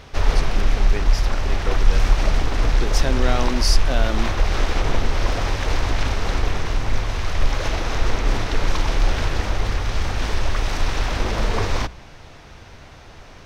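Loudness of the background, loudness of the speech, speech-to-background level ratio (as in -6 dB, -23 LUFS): -23.5 LUFS, -28.5 LUFS, -5.0 dB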